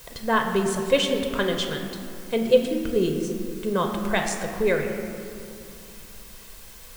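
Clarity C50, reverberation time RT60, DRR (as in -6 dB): 5.5 dB, 2.5 s, 3.0 dB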